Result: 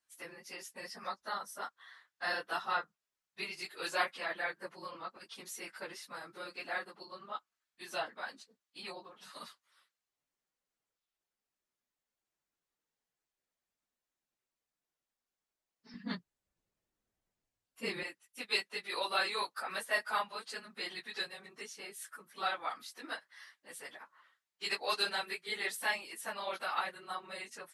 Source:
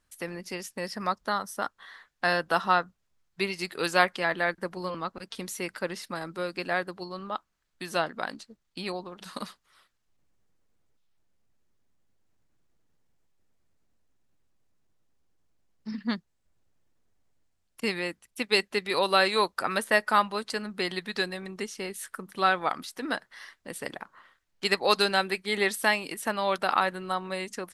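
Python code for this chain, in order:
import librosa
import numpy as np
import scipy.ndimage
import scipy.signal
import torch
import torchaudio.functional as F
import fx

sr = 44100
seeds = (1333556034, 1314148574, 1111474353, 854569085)

y = fx.phase_scramble(x, sr, seeds[0], window_ms=50)
y = fx.highpass(y, sr, hz=fx.steps((0.0, 820.0), (15.94, 140.0), (18.03, 1000.0)), slope=6)
y = F.gain(torch.from_numpy(y), -7.5).numpy()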